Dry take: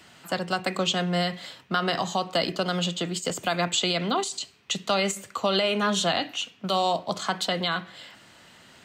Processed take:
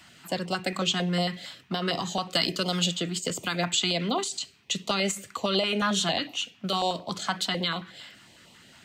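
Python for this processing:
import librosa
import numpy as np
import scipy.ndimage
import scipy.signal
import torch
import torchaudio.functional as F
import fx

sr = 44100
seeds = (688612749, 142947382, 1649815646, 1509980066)

y = fx.high_shelf(x, sr, hz=3600.0, db=7.5, at=(2.3, 2.97))
y = fx.filter_held_notch(y, sr, hz=11.0, low_hz=440.0, high_hz=1600.0)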